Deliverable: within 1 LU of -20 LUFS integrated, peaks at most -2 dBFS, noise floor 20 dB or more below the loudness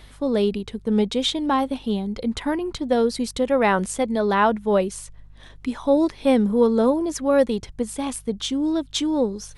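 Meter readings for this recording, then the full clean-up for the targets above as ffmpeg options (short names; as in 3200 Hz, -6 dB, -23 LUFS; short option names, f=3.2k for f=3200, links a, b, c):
hum 50 Hz; harmonics up to 150 Hz; hum level -45 dBFS; loudness -22.0 LUFS; peak -6.0 dBFS; loudness target -20.0 LUFS
-> -af "bandreject=f=50:t=h:w=4,bandreject=f=100:t=h:w=4,bandreject=f=150:t=h:w=4"
-af "volume=2dB"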